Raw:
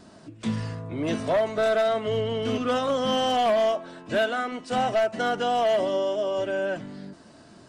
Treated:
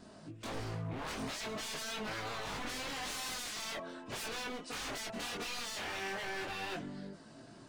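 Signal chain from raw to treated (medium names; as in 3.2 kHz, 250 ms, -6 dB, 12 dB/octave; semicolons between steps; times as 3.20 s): wavefolder -31 dBFS; chorus voices 4, 0.42 Hz, delay 22 ms, depth 4 ms; trim -1.5 dB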